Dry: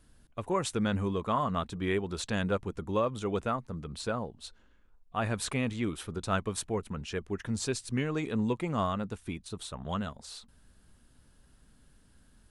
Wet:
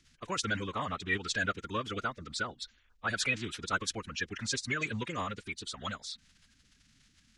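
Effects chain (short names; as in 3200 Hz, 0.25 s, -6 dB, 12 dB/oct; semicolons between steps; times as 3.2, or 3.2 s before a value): bin magnitudes rounded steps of 30 dB; band shelf 3100 Hz +14.5 dB 2.7 oct; time stretch by phase-locked vocoder 0.59×; gain -6 dB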